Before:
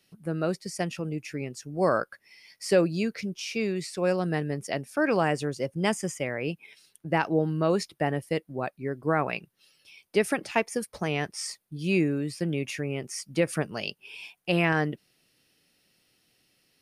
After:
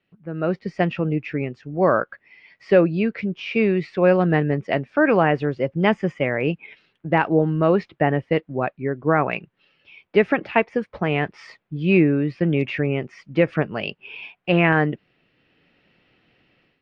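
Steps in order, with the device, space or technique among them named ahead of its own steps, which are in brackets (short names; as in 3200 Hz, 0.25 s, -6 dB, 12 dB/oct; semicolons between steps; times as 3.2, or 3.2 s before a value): action camera in a waterproof case (LPF 2800 Hz 24 dB/oct; AGC gain up to 14 dB; gain -3 dB; AAC 64 kbps 32000 Hz)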